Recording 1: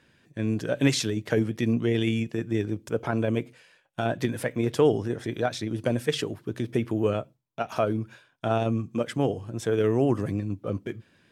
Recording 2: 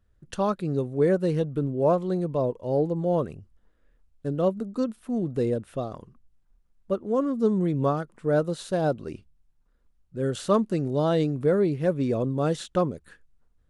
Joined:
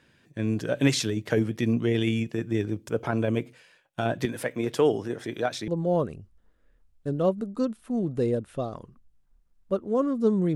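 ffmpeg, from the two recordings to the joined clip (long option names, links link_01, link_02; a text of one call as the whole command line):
ffmpeg -i cue0.wav -i cue1.wav -filter_complex "[0:a]asettb=1/sr,asplit=3[link_01][link_02][link_03];[link_01]atrim=end=4.254[link_04];[link_02]atrim=start=4.25:end=5.68,asetpts=PTS-STARTPTS,afade=type=in:duration=0.004:curve=qsin,afade=type=out:start_time=1.426:duration=0.004:curve=qsin,highpass=frequency=230:poles=1[link_05];[link_03]atrim=start=5.676[link_06];[link_04][link_05]acrossfade=duration=0.004:curve1=hsin:curve2=qsin[link_07];[link_07][link_06]acrossfade=duration=0.004:curve1=qsin:curve2=hsin,apad=whole_dur=10.55,atrim=end=10.55,atrim=end=5.682[link_08];[1:a]atrim=start=2.868:end=7.74[link_09];[link_08][link_09]acrossfade=duration=0.004:curve1=hsin:curve2=hsin" out.wav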